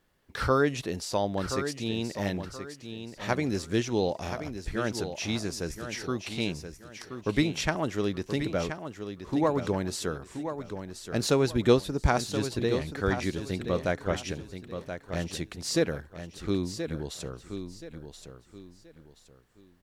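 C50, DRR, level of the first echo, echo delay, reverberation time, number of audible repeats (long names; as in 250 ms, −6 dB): no reverb audible, no reverb audible, −9.0 dB, 1,027 ms, no reverb audible, 3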